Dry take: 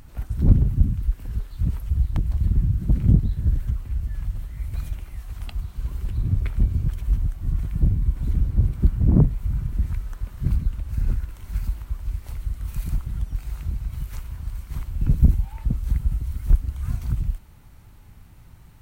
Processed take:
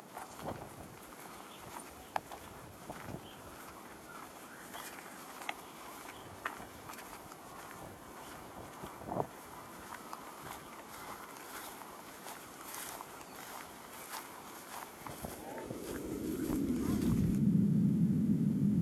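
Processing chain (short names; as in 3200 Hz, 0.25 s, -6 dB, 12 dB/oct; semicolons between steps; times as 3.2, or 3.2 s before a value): band noise 31–310 Hz -35 dBFS; formant shift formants -4 st; high-pass sweep 780 Hz -> 170 Hz, 15.06–17.42; gain +1.5 dB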